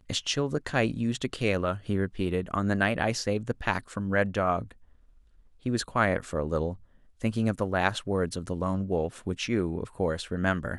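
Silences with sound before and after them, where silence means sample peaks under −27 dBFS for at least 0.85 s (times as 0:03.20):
0:04.62–0:05.66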